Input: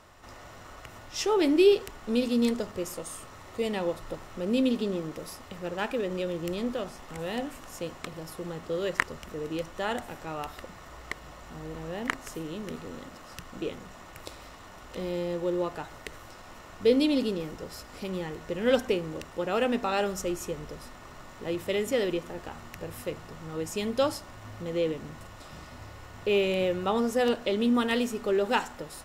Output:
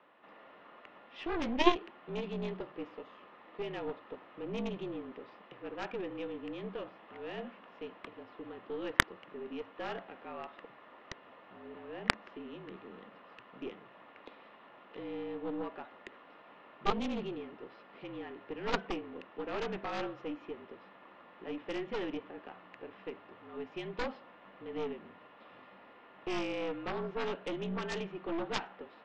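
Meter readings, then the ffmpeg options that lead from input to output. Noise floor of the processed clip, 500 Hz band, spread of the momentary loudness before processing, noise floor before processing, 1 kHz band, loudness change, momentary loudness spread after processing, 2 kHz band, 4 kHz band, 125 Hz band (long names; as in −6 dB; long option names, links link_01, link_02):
−57 dBFS, −11.0 dB, 20 LU, −48 dBFS, −5.0 dB, −9.0 dB, 20 LU, −4.0 dB, −7.0 dB, −8.5 dB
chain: -af "highpass=frequency=270:width_type=q:width=0.5412,highpass=frequency=270:width_type=q:width=1.307,lowpass=frequency=3300:width_type=q:width=0.5176,lowpass=frequency=3300:width_type=q:width=0.7071,lowpass=frequency=3300:width_type=q:width=1.932,afreqshift=-53,aeval=exprs='0.708*(cos(1*acos(clip(val(0)/0.708,-1,1)))-cos(1*PI/2))+0.141*(cos(2*acos(clip(val(0)/0.708,-1,1)))-cos(2*PI/2))+0.0398*(cos(6*acos(clip(val(0)/0.708,-1,1)))-cos(6*PI/2))+0.141*(cos(7*acos(clip(val(0)/0.708,-1,1)))-cos(7*PI/2))+0.00501*(cos(8*acos(clip(val(0)/0.708,-1,1)))-cos(8*PI/2))':channel_layout=same,volume=1dB"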